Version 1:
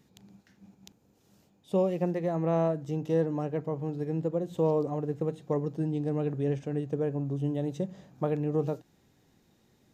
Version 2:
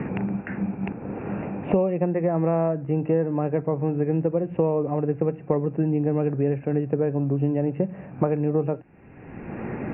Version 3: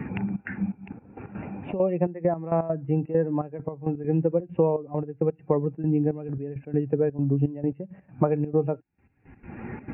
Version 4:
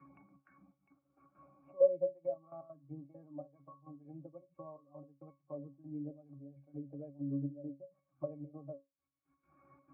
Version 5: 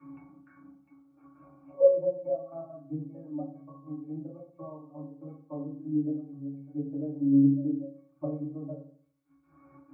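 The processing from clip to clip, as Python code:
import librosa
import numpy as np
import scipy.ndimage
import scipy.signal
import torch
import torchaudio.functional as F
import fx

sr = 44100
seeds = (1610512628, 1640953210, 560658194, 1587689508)

y1 = scipy.signal.sosfilt(scipy.signal.cheby1(8, 1.0, 2700.0, 'lowpass', fs=sr, output='sos'), x)
y1 = fx.band_squash(y1, sr, depth_pct=100)
y1 = y1 * 10.0 ** (6.5 / 20.0)
y2 = fx.bin_expand(y1, sr, power=1.5)
y2 = fx.step_gate(y2, sr, bpm=167, pattern='xxxx.xxx..x..x.', floor_db=-12.0, edge_ms=4.5)
y2 = y2 * 10.0 ** (2.5 / 20.0)
y3 = fx.octave_resonator(y2, sr, note='C#', decay_s=0.22)
y3 = fx.auto_wah(y3, sr, base_hz=510.0, top_hz=1300.0, q=2.9, full_db=-28.5, direction='down')
y3 = y3 * 10.0 ** (3.5 / 20.0)
y4 = fx.rev_fdn(y3, sr, rt60_s=0.53, lf_ratio=1.1, hf_ratio=0.3, size_ms=20.0, drr_db=-5.5)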